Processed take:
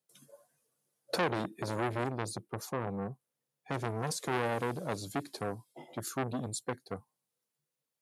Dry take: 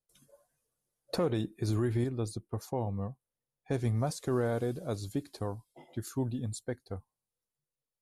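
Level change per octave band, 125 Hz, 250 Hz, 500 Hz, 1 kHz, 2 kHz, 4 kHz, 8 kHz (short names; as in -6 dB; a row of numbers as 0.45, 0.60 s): -6.5, -3.5, -1.5, +6.0, +8.0, +3.5, +4.0 dB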